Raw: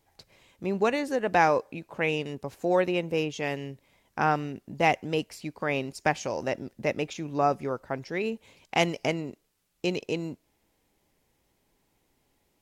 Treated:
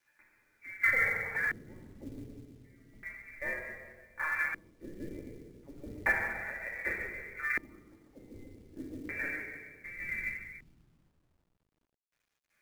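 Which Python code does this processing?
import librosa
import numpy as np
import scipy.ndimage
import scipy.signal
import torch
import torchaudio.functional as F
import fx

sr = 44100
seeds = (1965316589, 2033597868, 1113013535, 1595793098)

y = fx.low_shelf(x, sr, hz=130.0, db=6.0)
y = fx.echo_feedback(y, sr, ms=145, feedback_pct=30, wet_db=-3)
y = fx.env_flanger(y, sr, rest_ms=10.8, full_db=-18.5)
y = fx.freq_invert(y, sr, carrier_hz=2500)
y = fx.dynamic_eq(y, sr, hz=520.0, q=1.8, threshold_db=-49.0, ratio=4.0, max_db=5)
y = fx.chopper(y, sr, hz=1.2, depth_pct=65, duty_pct=35)
y = fx.level_steps(y, sr, step_db=16, at=(2.34, 4.41))
y = fx.room_shoebox(y, sr, seeds[0], volume_m3=1500.0, walls='mixed', distance_m=2.5)
y = fx.filter_lfo_lowpass(y, sr, shape='square', hz=0.33, low_hz=310.0, high_hz=1600.0, q=2.3)
y = fx.quant_companded(y, sr, bits=6)
y = y * 10.0 ** (-8.5 / 20.0)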